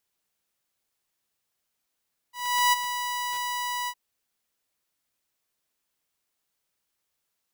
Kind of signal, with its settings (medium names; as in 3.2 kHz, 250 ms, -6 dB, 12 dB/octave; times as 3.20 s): ADSR saw 980 Hz, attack 397 ms, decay 20 ms, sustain -10.5 dB, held 1.55 s, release 60 ms -15 dBFS